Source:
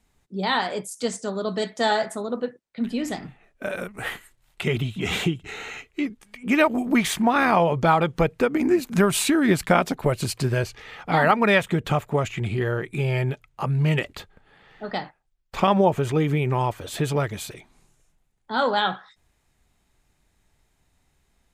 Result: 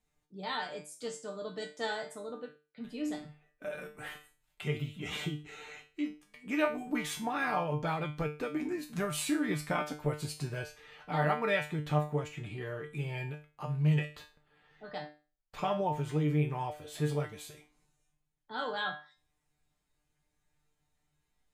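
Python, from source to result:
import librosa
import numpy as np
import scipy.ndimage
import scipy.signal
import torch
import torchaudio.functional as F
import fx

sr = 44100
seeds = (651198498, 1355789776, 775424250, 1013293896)

y = fx.comb_fb(x, sr, f0_hz=150.0, decay_s=0.33, harmonics='all', damping=0.0, mix_pct=90)
y = F.gain(torch.from_numpy(y), -1.5).numpy()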